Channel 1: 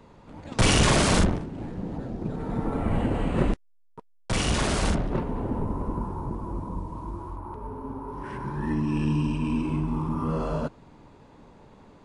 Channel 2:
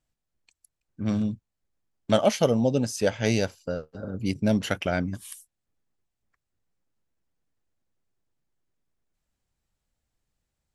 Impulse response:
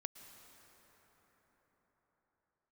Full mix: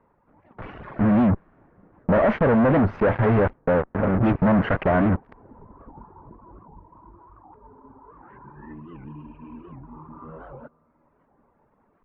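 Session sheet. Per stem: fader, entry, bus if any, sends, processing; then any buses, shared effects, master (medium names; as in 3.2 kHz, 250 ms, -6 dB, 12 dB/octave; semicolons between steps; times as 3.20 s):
-7.5 dB, 0.00 s, send -11 dB, reverb removal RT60 0.92 s; bass shelf 440 Hz -8.5 dB; auto duck -10 dB, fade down 0.85 s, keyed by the second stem
-2.5 dB, 0.00 s, no send, treble shelf 2.3 kHz -6.5 dB; fuzz box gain 41 dB, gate -40 dBFS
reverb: on, RT60 5.2 s, pre-delay 103 ms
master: low-pass 1.8 kHz 24 dB/octave; warped record 78 rpm, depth 250 cents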